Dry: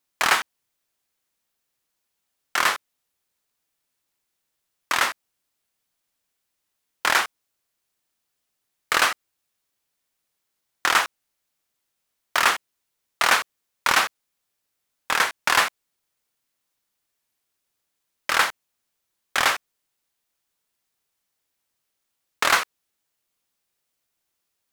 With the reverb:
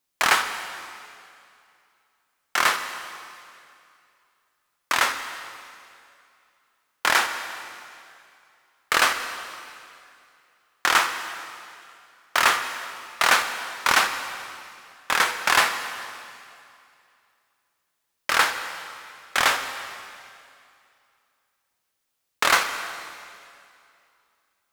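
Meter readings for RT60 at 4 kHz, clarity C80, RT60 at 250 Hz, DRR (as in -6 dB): 2.3 s, 9.0 dB, 2.5 s, 7.0 dB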